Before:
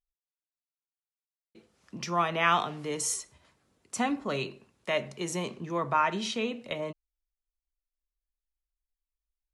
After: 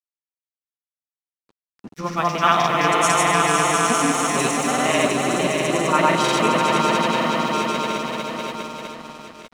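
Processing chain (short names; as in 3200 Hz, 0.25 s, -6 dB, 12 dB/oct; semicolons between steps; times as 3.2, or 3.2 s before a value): swelling echo 0.139 s, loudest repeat 5, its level -4.5 dB; grains 0.106 s, grains 20/s, pitch spread up and down by 0 st; crossover distortion -48.5 dBFS; gain +9 dB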